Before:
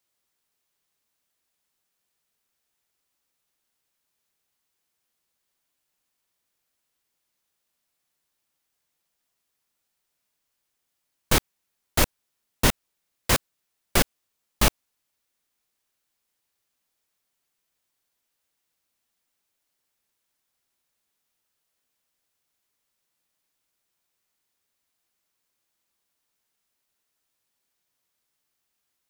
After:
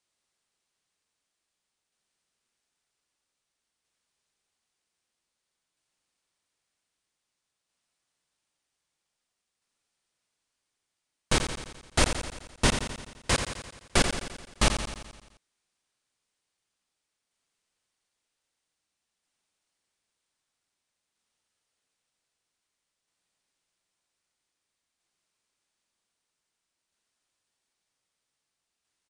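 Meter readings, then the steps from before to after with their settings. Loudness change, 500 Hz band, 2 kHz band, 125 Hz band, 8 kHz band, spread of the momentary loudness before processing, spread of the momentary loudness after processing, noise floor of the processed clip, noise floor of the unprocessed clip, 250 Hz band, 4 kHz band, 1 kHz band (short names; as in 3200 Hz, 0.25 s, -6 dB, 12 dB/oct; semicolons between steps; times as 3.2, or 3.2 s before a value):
-3.5 dB, -1.5 dB, -1.5 dB, -1.5 dB, -2.0 dB, 5 LU, 14 LU, -84 dBFS, -79 dBFS, -1.5 dB, -1.0 dB, -1.5 dB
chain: elliptic low-pass 9400 Hz, stop band 70 dB; tremolo saw down 0.52 Hz, depth 30%; on a send: feedback echo 86 ms, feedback 60%, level -8 dB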